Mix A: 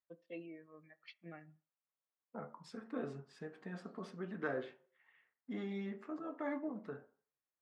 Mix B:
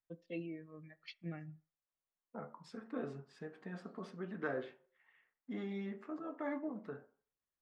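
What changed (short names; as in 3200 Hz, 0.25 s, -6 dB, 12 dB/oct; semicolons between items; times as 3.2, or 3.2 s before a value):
first voice: remove band-pass 1000 Hz, Q 0.6; master: add high shelf 5900 Hz -4 dB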